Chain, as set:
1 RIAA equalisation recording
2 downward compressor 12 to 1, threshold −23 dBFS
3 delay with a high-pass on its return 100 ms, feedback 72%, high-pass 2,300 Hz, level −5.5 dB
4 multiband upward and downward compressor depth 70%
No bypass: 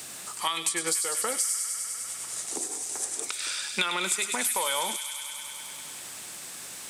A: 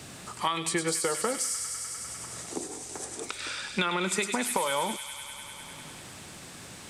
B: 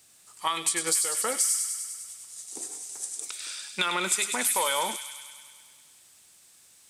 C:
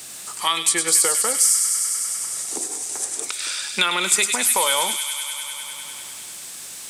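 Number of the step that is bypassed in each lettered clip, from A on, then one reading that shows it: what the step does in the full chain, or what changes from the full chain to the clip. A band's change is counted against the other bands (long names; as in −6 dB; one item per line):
1, 125 Hz band +10.0 dB
4, change in momentary loudness spread +3 LU
2, average gain reduction 4.5 dB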